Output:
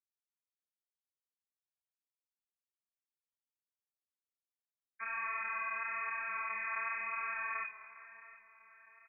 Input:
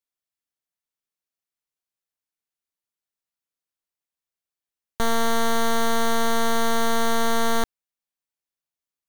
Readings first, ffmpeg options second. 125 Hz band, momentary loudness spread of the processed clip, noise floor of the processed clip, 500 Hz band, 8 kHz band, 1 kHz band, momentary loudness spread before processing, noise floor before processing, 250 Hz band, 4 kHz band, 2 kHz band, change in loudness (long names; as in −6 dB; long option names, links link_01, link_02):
below −35 dB, 16 LU, below −85 dBFS, −31.0 dB, below −40 dB, −14.5 dB, 3 LU, below −85 dBFS, below −40 dB, below −40 dB, −6.5 dB, −13.5 dB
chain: -filter_complex "[0:a]afftfilt=real='re*gte(hypot(re,im),0.224)':imag='im*gte(hypot(re,im),0.224)':win_size=1024:overlap=0.75,tiltshelf=frequency=970:gain=-10,acontrast=74,aeval=exprs='(tanh(11.2*val(0)+0.35)-tanh(0.35))/11.2':channel_layout=same,flanger=delay=8.7:depth=2.3:regen=-29:speed=0.44:shape=triangular,crystalizer=i=4:c=0,asplit=2[link_01][link_02];[link_02]highpass=frequency=720:poles=1,volume=9dB,asoftclip=type=tanh:threshold=-16dB[link_03];[link_01][link_03]amix=inputs=2:normalize=0,lowpass=frequency=1300:poles=1,volume=-6dB,asplit=2[link_04][link_05];[link_05]asplit=4[link_06][link_07][link_08][link_09];[link_06]adelay=209,afreqshift=34,volume=-17.5dB[link_10];[link_07]adelay=418,afreqshift=68,volume=-24.8dB[link_11];[link_08]adelay=627,afreqshift=102,volume=-32.2dB[link_12];[link_09]adelay=836,afreqshift=136,volume=-39.5dB[link_13];[link_10][link_11][link_12][link_13]amix=inputs=4:normalize=0[link_14];[link_04][link_14]amix=inputs=2:normalize=0,lowpass=frequency=2100:width_type=q:width=0.5098,lowpass=frequency=2100:width_type=q:width=0.6013,lowpass=frequency=2100:width_type=q:width=0.9,lowpass=frequency=2100:width_type=q:width=2.563,afreqshift=-2500,asplit=2[link_15][link_16];[link_16]aecho=0:1:711|1422|2133|2844:0.15|0.0733|0.0359|0.0176[link_17];[link_15][link_17]amix=inputs=2:normalize=0,flanger=delay=9.7:depth=8.8:regen=-11:speed=0.95:shape=triangular,volume=-7.5dB"